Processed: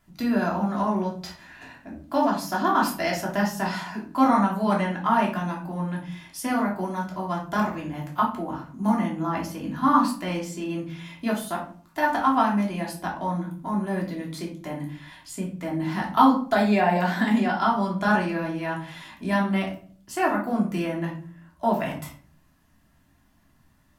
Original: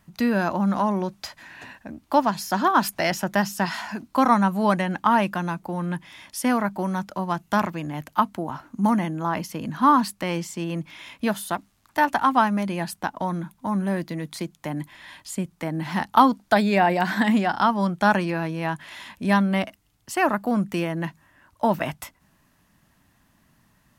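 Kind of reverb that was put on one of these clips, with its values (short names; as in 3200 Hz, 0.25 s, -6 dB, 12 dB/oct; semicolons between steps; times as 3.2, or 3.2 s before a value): shoebox room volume 380 m³, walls furnished, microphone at 3.1 m; gain -7.5 dB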